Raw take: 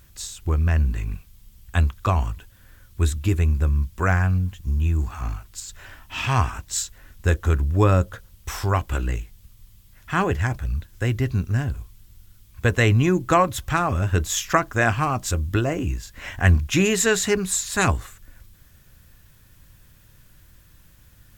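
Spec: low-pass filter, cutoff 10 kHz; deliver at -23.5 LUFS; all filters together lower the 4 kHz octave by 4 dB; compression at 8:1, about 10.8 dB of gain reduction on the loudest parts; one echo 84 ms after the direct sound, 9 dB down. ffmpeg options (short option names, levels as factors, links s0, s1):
-af "lowpass=10000,equalizer=f=4000:t=o:g=-5.5,acompressor=threshold=0.0708:ratio=8,aecho=1:1:84:0.355,volume=1.78"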